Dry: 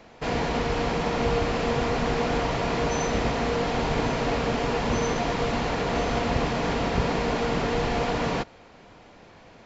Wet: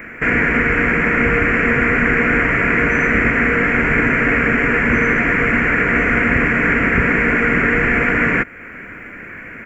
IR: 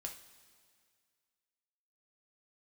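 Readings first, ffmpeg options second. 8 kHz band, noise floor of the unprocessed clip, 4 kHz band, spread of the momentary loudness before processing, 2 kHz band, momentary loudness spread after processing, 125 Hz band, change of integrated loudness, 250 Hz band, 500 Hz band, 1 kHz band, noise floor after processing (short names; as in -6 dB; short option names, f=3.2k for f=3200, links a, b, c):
n/a, -51 dBFS, -3.5 dB, 1 LU, +19.5 dB, 5 LU, +6.5 dB, +11.5 dB, +10.0 dB, +5.0 dB, +5.5 dB, -35 dBFS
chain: -filter_complex "[0:a]firequalizer=gain_entry='entry(150,0);entry(250,5);entry(830,-11);entry(1500,14);entry(2200,15);entry(3700,-27);entry(6400,-14);entry(9700,14)':delay=0.05:min_phase=1,asplit=2[a][b];[b]acompressor=threshold=-34dB:ratio=6,volume=1.5dB[c];[a][c]amix=inputs=2:normalize=0,volume=4.5dB"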